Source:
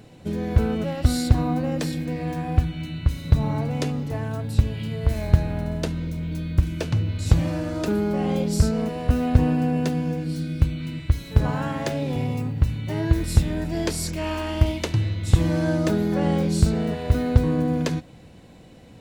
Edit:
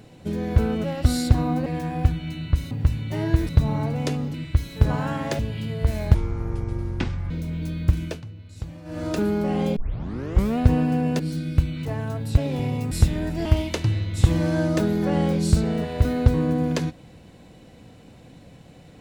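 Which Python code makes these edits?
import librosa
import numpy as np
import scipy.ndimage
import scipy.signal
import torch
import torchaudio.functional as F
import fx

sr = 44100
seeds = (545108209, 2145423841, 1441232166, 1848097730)

y = fx.edit(x, sr, fx.cut(start_s=1.66, length_s=0.53),
    fx.swap(start_s=4.09, length_s=0.52, other_s=10.89, other_length_s=1.05),
    fx.speed_span(start_s=5.36, length_s=0.64, speed=0.55),
    fx.fade_down_up(start_s=6.73, length_s=1.01, db=-16.0, fade_s=0.2),
    fx.tape_start(start_s=8.46, length_s=0.82),
    fx.cut(start_s=9.89, length_s=0.34),
    fx.move(start_s=12.48, length_s=0.78, to_s=3.24),
    fx.cut(start_s=13.8, length_s=0.75), tone=tone)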